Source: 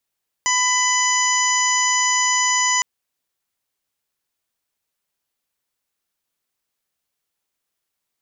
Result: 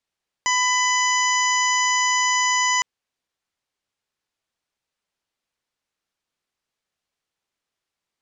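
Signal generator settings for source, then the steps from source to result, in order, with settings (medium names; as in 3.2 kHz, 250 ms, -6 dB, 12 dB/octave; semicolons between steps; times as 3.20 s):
steady additive tone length 2.36 s, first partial 999 Hz, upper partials -1/-5.5/-19/-7.5/-2/-1 dB, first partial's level -21 dB
Bessel low-pass 5.4 kHz, order 2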